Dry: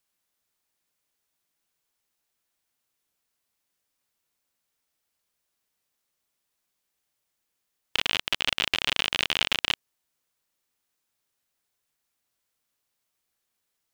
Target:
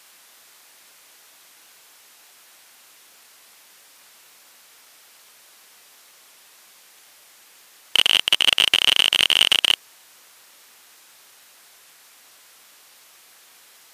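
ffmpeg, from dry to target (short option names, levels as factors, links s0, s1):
-filter_complex "[0:a]crystalizer=i=0.5:c=0,asplit=2[s0][s1];[s1]highpass=f=720:p=1,volume=56.2,asoftclip=type=tanh:threshold=0.562[s2];[s0][s2]amix=inputs=2:normalize=0,lowpass=f=4100:p=1,volume=0.501,volume=1.78" -ar 32000 -c:a libmp3lame -b:a 96k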